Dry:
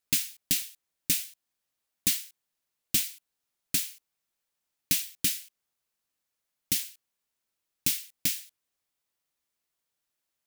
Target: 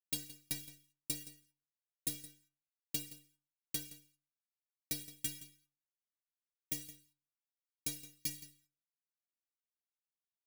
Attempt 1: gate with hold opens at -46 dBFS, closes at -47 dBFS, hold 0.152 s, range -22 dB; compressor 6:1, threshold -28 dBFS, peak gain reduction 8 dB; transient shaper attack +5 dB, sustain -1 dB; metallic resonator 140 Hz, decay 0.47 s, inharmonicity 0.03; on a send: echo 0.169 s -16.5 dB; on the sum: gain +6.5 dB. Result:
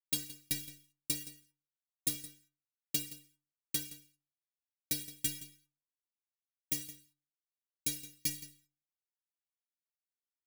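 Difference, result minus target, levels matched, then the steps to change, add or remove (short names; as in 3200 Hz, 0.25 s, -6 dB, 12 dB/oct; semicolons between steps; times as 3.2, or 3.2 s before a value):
compressor: peak gain reduction -5 dB
change: compressor 6:1, threshold -34 dBFS, peak gain reduction 13 dB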